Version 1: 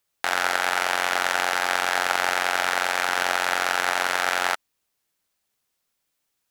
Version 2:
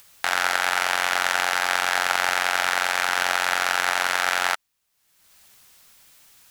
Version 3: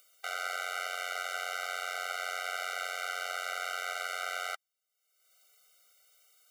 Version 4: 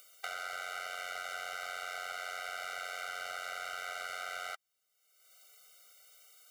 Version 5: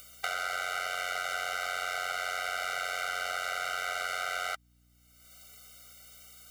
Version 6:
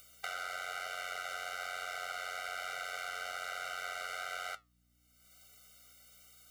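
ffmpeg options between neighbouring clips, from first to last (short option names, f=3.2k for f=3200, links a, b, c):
-af "equalizer=f=380:t=o:w=1.8:g=-6.5,acompressor=mode=upward:threshold=-37dB:ratio=2.5,volume=2dB"
-af "alimiter=limit=-7dB:level=0:latency=1:release=11,afftfilt=real='re*eq(mod(floor(b*sr/1024/390),2),1)':imag='im*eq(mod(floor(b*sr/1024/390),2),1)':win_size=1024:overlap=0.75,volume=-8.5dB"
-af "asoftclip=type=tanh:threshold=-27dB,acompressor=threshold=-43dB:ratio=4,volume=5dB"
-af "aeval=exprs='val(0)+0.000282*(sin(2*PI*60*n/s)+sin(2*PI*2*60*n/s)/2+sin(2*PI*3*60*n/s)/3+sin(2*PI*4*60*n/s)/4+sin(2*PI*5*60*n/s)/5)':c=same,volume=7dB"
-af "flanger=delay=8.9:depth=4.7:regen=72:speed=1.1:shape=triangular,volume=-2.5dB"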